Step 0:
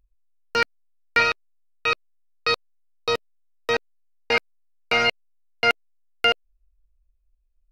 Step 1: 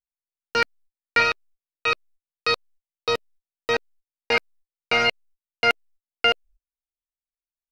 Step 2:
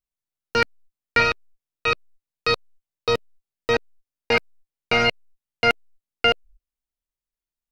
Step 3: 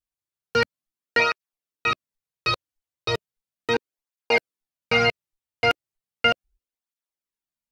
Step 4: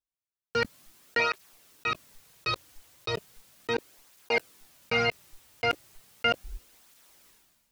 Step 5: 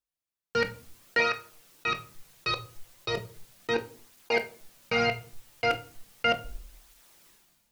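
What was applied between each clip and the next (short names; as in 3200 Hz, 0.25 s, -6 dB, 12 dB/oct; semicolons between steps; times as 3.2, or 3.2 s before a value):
gate -50 dBFS, range -39 dB
low shelf 300 Hz +10 dB
tape flanging out of phase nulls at 0.36 Hz, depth 5.3 ms; gain +1.5 dB
sustainer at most 36 dB/s; gain -6.5 dB
shoebox room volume 320 m³, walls furnished, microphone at 0.79 m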